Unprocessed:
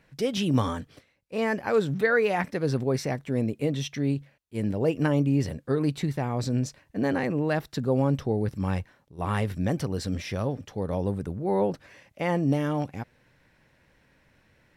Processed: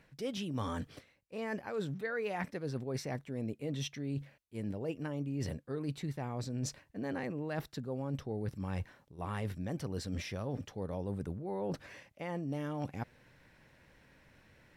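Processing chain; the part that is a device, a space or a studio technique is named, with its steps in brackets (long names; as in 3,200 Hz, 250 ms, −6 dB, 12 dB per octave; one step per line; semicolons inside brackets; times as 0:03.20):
compression on the reversed sound (reversed playback; downward compressor 6 to 1, threshold −35 dBFS, peak gain reduction 16 dB; reversed playback)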